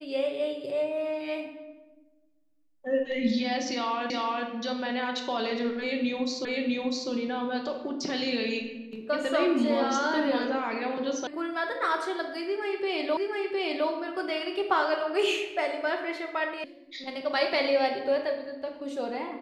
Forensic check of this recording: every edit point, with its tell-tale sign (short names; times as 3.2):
4.1 repeat of the last 0.37 s
6.45 repeat of the last 0.65 s
11.27 sound cut off
13.17 repeat of the last 0.71 s
16.64 sound cut off